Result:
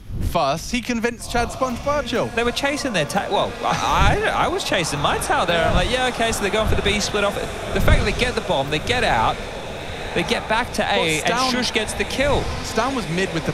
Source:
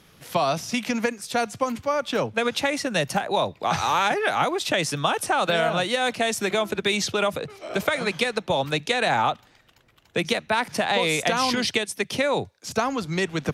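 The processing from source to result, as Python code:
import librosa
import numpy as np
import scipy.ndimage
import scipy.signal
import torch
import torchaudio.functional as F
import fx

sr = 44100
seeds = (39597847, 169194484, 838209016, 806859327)

y = fx.dmg_wind(x, sr, seeds[0], corner_hz=89.0, level_db=-31.0)
y = fx.echo_diffused(y, sr, ms=1148, feedback_pct=62, wet_db=-11)
y = y * 10.0 ** (3.0 / 20.0)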